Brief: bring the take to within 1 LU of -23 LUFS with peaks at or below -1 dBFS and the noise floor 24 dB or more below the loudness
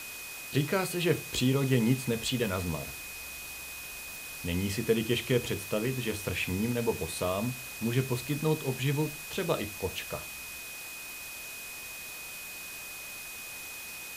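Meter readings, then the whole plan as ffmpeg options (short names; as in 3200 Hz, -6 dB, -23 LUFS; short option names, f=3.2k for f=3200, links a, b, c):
steady tone 2500 Hz; tone level -43 dBFS; noise floor -42 dBFS; noise floor target -56 dBFS; loudness -32.0 LUFS; peak -12.5 dBFS; loudness target -23.0 LUFS
-> -af "bandreject=f=2.5k:w=30"
-af "afftdn=nr=14:nf=-42"
-af "volume=9dB"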